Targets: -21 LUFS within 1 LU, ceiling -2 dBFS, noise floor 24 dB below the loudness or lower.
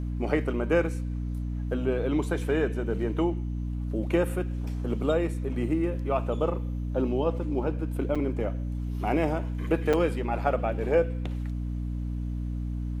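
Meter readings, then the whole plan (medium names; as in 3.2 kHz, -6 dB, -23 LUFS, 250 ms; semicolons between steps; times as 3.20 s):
dropouts 2; longest dropout 5.5 ms; hum 60 Hz; highest harmonic 300 Hz; hum level -29 dBFS; loudness -29.0 LUFS; peak level -11.0 dBFS; loudness target -21.0 LUFS
-> interpolate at 8.15/9.93 s, 5.5 ms; hum notches 60/120/180/240/300 Hz; trim +8 dB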